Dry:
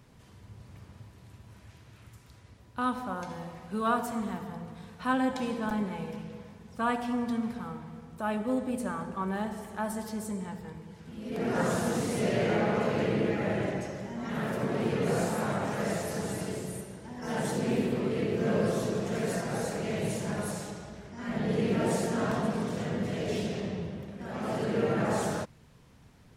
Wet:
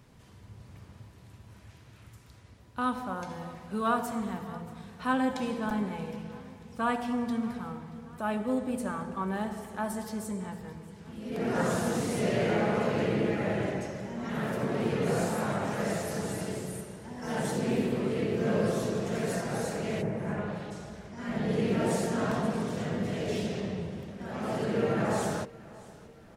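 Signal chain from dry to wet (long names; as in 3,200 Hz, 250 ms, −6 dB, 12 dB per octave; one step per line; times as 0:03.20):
0:20.01–0:20.70: low-pass filter 1,700 Hz → 3,900 Hz 24 dB per octave
repeating echo 630 ms, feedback 51%, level −20.5 dB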